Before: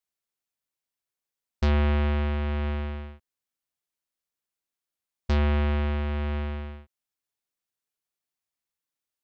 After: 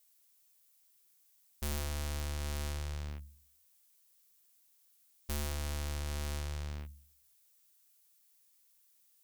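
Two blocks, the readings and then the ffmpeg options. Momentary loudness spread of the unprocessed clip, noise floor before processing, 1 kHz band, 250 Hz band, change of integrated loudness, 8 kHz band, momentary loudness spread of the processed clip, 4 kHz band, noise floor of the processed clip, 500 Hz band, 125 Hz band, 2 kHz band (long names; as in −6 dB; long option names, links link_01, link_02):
15 LU, below −85 dBFS, −12.5 dB, −16.5 dB, −12.5 dB, can't be measured, 10 LU, −3.5 dB, −69 dBFS, −14.0 dB, −12.0 dB, −11.0 dB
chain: -af "bandreject=frequency=71.62:width_type=h:width=4,bandreject=frequency=143.24:width_type=h:width=4,bandreject=frequency=214.86:width_type=h:width=4,aeval=exprs='(tanh(141*val(0)+0.55)-tanh(0.55))/141':channel_layout=same,crystalizer=i=4.5:c=0,volume=6.5dB"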